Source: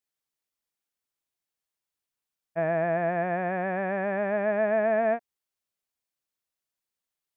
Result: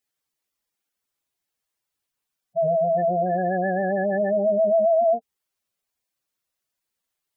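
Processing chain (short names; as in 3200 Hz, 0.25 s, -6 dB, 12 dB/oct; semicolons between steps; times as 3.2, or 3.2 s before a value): spectral gate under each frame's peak -10 dB strong; gain +6.5 dB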